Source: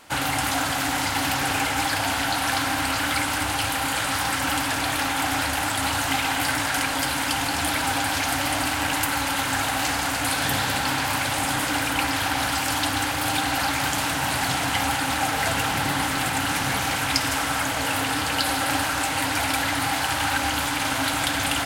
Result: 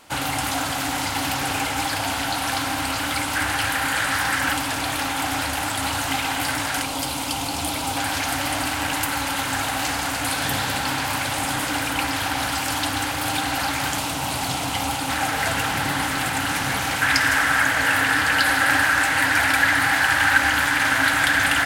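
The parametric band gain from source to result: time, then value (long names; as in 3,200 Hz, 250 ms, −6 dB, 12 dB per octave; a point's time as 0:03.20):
parametric band 1,700 Hz 0.62 octaves
−2.5 dB
from 0:03.35 +7 dB
from 0:04.53 −1.5 dB
from 0:06.82 −11.5 dB
from 0:07.97 −0.5 dB
from 0:13.99 −7.5 dB
from 0:15.09 +2.5 dB
from 0:17.02 +13 dB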